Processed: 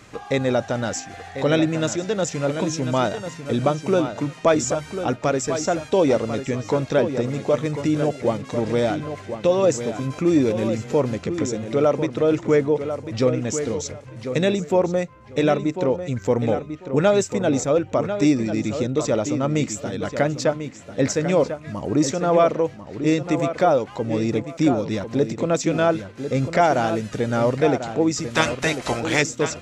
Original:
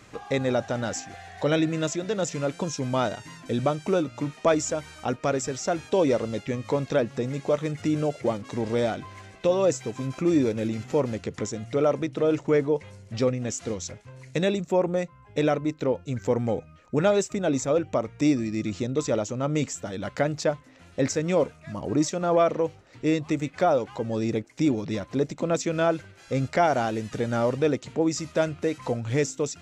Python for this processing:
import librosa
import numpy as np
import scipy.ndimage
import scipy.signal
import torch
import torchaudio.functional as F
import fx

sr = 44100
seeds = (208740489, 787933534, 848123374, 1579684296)

p1 = fx.spec_clip(x, sr, under_db=23, at=(28.3, 29.21), fade=0.02)
p2 = p1 + fx.echo_filtered(p1, sr, ms=1045, feedback_pct=21, hz=4000.0, wet_db=-9, dry=0)
y = F.gain(torch.from_numpy(p2), 4.0).numpy()